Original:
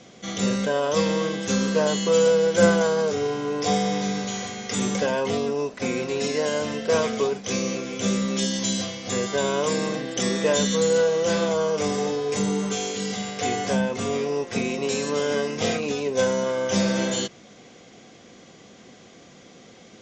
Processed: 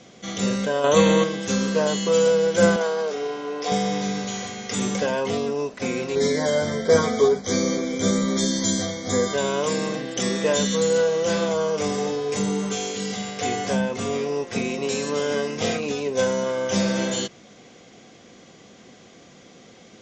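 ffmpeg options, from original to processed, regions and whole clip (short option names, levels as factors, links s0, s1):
-filter_complex "[0:a]asettb=1/sr,asplit=3[s0][s1][s2];[s0]atrim=end=0.844[s3];[s1]atrim=start=0.84:end=1.24,asetpts=PTS-STARTPTS,afade=t=in:d=0.004:c=qsin,afade=t=out:st=0.396:d=0.004:c=qsin,asuperstop=centerf=5100:order=8:qfactor=3.8,acontrast=63[s4];[s2]atrim=start=1.236[s5];[s3][s4]acrossfade=d=0.004:c1=hsin:c2=qsin[s6];[s6][s5]acrossfade=d=0.004:c1=qsin:c2=hsin,asettb=1/sr,asplit=3[s7][s8][s9];[s7]atrim=end=2.764[s10];[s8]atrim=start=2.76:end=3.72,asetpts=PTS-STARTPTS,afade=t=in:d=0.004:c=qsin,afade=t=out:st=0.956:d=0.004:c=qsin,tremolo=f=270:d=0.261,highpass=330,lowpass=5700[s11];[s9]atrim=start=3.716[s12];[s10][s11]acrossfade=d=0.004:c1=hsin:c2=qsin[s13];[s13][s12]acrossfade=d=0.004:c1=qsin:c2=hsin,asettb=1/sr,asplit=3[s14][s15][s16];[s14]atrim=end=6.154[s17];[s15]atrim=start=6.15:end=9.34,asetpts=PTS-STARTPTS,afade=t=in:d=0.004:c=qsin,afade=t=out:st=3.186:d=0.004:c=qsin,asuperstop=centerf=2700:order=12:qfactor=3.7,lowshelf=f=370:g=4.5,asplit=2[s18][s19];[s19]adelay=12,volume=0.794[s20];[s18][s20]amix=inputs=2:normalize=0,atrim=end_sample=140679[s21];[s16]atrim=start=9.336[s22];[s17][s21]acrossfade=d=0.004:c1=hsin:c2=qsin[s23];[s23][s22]acrossfade=d=0.004:c1=qsin:c2=hsin"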